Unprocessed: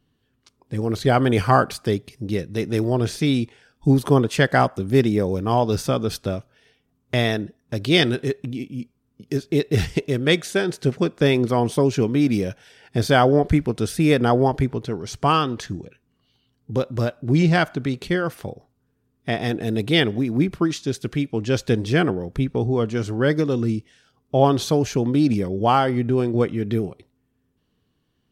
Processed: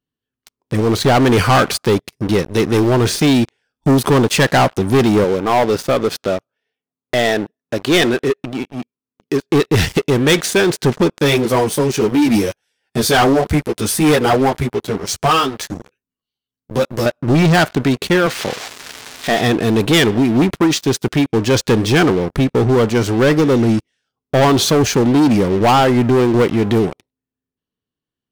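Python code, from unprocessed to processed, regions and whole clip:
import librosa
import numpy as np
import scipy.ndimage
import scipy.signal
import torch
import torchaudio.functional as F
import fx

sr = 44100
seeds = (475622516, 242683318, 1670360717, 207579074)

y = fx.chain(x, sr, fx.highpass(hz=330.0, slope=6),
    fx.high_shelf(hz=3600.0, db=-10.5), at=(5.24, 9.5))
y = fx.chain(y, sr, fx.high_shelf(hz=7400.0, db=11.5),
    fx.tremolo_shape(shape='triangle', hz=1.1, depth_pct=40),
    fx.ensemble(), at=(11.18, 17.06))
y = fx.chain(y, sr, fx.crossing_spikes(level_db=-17.0),
    fx.bandpass_edges(low_hz=160.0, high_hz=3300.0), at=(18.26, 19.41))
y = fx.low_shelf(y, sr, hz=170.0, db=-7.0)
y = fx.leveller(y, sr, passes=5)
y = y * 10.0 ** (-5.0 / 20.0)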